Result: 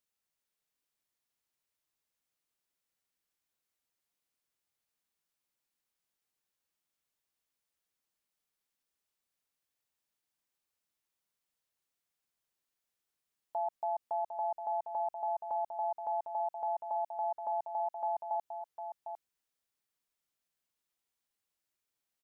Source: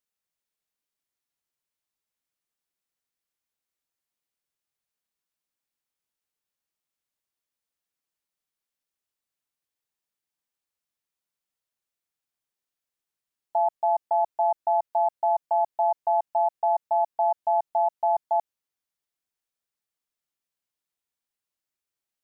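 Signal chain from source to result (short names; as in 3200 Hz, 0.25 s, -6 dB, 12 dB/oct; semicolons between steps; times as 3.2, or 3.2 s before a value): 17.86–18.35 low shelf 440 Hz -9 dB; limiter -27 dBFS, peak gain reduction 11.5 dB; echo 0.753 s -8 dB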